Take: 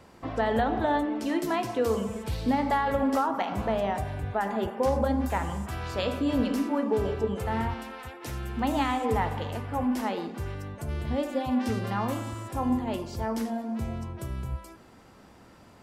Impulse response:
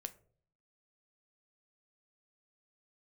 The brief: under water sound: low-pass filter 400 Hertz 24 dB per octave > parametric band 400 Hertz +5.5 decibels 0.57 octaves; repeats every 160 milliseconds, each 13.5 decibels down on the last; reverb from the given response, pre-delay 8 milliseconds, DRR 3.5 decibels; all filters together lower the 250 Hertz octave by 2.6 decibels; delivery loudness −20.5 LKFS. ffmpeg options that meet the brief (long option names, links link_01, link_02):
-filter_complex "[0:a]equalizer=frequency=250:width_type=o:gain=-4,aecho=1:1:160|320:0.211|0.0444,asplit=2[link_01][link_02];[1:a]atrim=start_sample=2205,adelay=8[link_03];[link_02][link_03]afir=irnorm=-1:irlink=0,volume=0dB[link_04];[link_01][link_04]amix=inputs=2:normalize=0,lowpass=frequency=400:width=0.5412,lowpass=frequency=400:width=1.3066,equalizer=frequency=400:width_type=o:width=0.57:gain=5.5,volume=11dB"